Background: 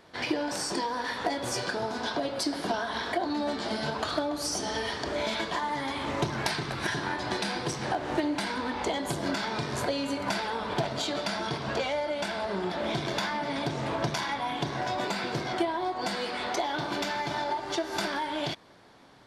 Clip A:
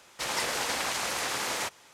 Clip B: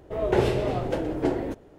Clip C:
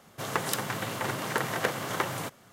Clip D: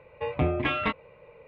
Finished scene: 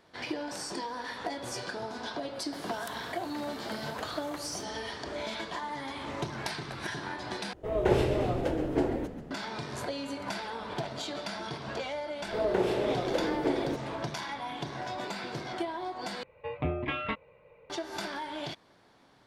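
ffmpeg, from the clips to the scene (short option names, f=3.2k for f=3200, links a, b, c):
-filter_complex "[2:a]asplit=2[a][b];[0:a]volume=-6dB[c];[a]asplit=9[d][e][f][g][h][i][j][k][l];[e]adelay=135,afreqshift=-45,volume=-12.5dB[m];[f]adelay=270,afreqshift=-90,volume=-16.4dB[n];[g]adelay=405,afreqshift=-135,volume=-20.3dB[o];[h]adelay=540,afreqshift=-180,volume=-24.1dB[p];[i]adelay=675,afreqshift=-225,volume=-28dB[q];[j]adelay=810,afreqshift=-270,volume=-31.9dB[r];[k]adelay=945,afreqshift=-315,volume=-35.8dB[s];[l]adelay=1080,afreqshift=-360,volume=-39.6dB[t];[d][m][n][o][p][q][r][s][t]amix=inputs=9:normalize=0[u];[b]acrossover=split=200|670[v][w][x];[v]acompressor=threshold=-48dB:ratio=4[y];[w]acompressor=threshold=-26dB:ratio=4[z];[x]acompressor=threshold=-36dB:ratio=4[aa];[y][z][aa]amix=inputs=3:normalize=0[ab];[c]asplit=3[ac][ad][ae];[ac]atrim=end=7.534[af];[u]atrim=end=1.78,asetpts=PTS-STARTPTS,volume=-3dB[ag];[ad]atrim=start=9.306:end=16.234[ah];[4:a]atrim=end=1.47,asetpts=PTS-STARTPTS,volume=-6dB[ai];[ae]atrim=start=17.696[aj];[3:a]atrim=end=2.52,asetpts=PTS-STARTPTS,volume=-15dB,afade=t=in:d=0.004:c=hsin,afade=t=out:st=2.516:d=0.004:c=hsin,adelay=2340[ak];[ab]atrim=end=1.78,asetpts=PTS-STARTPTS,volume=-0.5dB,afade=t=in:d=0.004:c=hsin,afade=t=out:st=1.776:d=0.004:c=hsin,adelay=12220[al];[af][ag]acrossfade=d=0.004:c1=hsin:c2=hsin[am];[am][ah]acrossfade=d=0.004:c1=hsin:c2=hsin[an];[an][ai]acrossfade=d=0.004:c1=hsin:c2=hsin[ao];[ao][aj]acrossfade=d=0.004:c1=hsin:c2=hsin[ap];[ap][ak][al]amix=inputs=3:normalize=0"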